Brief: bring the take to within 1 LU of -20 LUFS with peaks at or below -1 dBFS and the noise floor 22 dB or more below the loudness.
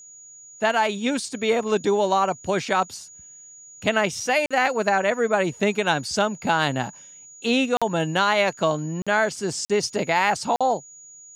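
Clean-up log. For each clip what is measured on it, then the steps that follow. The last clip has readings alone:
dropouts 5; longest dropout 46 ms; steady tone 6800 Hz; tone level -43 dBFS; loudness -22.5 LUFS; peak -6.0 dBFS; loudness target -20.0 LUFS
-> interpolate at 4.46/7.77/9.02/9.65/10.56, 46 ms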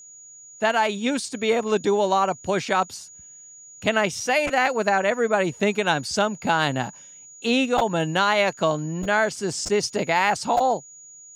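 dropouts 0; steady tone 6800 Hz; tone level -43 dBFS
-> notch 6800 Hz, Q 30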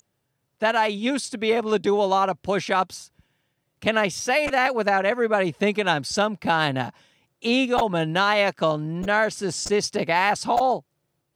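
steady tone none; loudness -22.5 LUFS; peak -6.0 dBFS; loudness target -20.0 LUFS
-> gain +2.5 dB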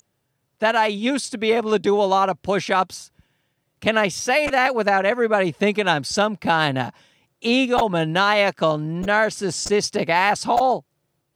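loudness -20.0 LUFS; peak -4.0 dBFS; noise floor -73 dBFS

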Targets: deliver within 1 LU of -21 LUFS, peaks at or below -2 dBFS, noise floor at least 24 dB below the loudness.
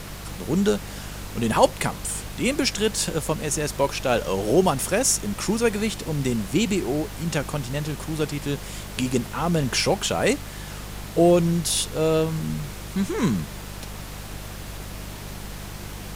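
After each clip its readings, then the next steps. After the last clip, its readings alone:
hum 50 Hz; harmonics up to 200 Hz; hum level -35 dBFS; noise floor -37 dBFS; noise floor target -48 dBFS; loudness -24.0 LUFS; peak -3.0 dBFS; loudness target -21.0 LUFS
-> de-hum 50 Hz, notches 4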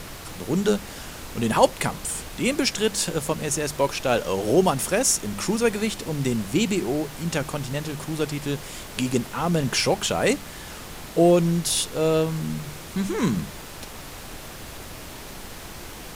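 hum none; noise floor -39 dBFS; noise floor target -48 dBFS
-> noise print and reduce 9 dB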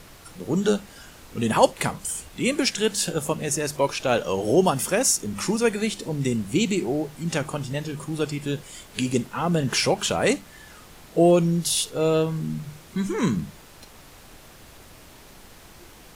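noise floor -48 dBFS; loudness -24.0 LUFS; peak -3.5 dBFS; loudness target -21.0 LUFS
-> gain +3 dB; limiter -2 dBFS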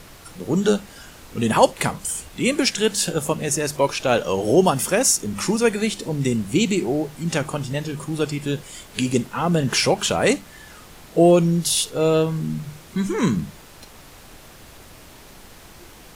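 loudness -21.0 LUFS; peak -2.0 dBFS; noise floor -45 dBFS

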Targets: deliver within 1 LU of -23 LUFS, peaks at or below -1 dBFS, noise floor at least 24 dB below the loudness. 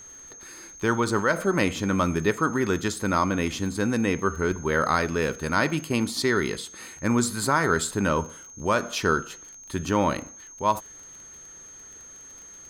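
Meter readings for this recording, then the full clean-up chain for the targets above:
ticks 27/s; steady tone 6400 Hz; tone level -43 dBFS; loudness -25.0 LUFS; peak -8.0 dBFS; loudness target -23.0 LUFS
-> de-click; notch 6400 Hz, Q 30; gain +2 dB

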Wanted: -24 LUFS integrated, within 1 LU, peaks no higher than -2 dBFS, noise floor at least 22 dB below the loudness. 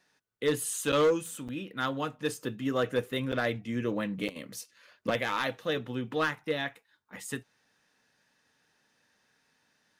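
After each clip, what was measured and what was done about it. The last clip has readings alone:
clipped 0.5%; flat tops at -19.5 dBFS; dropouts 4; longest dropout 7.5 ms; loudness -31.5 LUFS; peak -19.5 dBFS; loudness target -24.0 LUFS
-> clip repair -19.5 dBFS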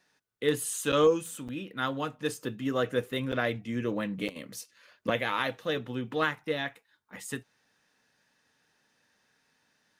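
clipped 0.0%; dropouts 4; longest dropout 7.5 ms
-> interpolate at 0.92/1.48/3.32/4.28, 7.5 ms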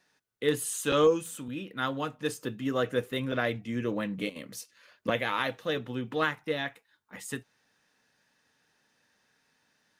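dropouts 0; loudness -31.0 LUFS; peak -12.0 dBFS; loudness target -24.0 LUFS
-> gain +7 dB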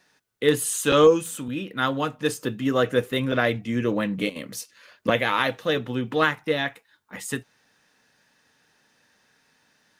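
loudness -24.0 LUFS; peak -5.0 dBFS; noise floor -65 dBFS

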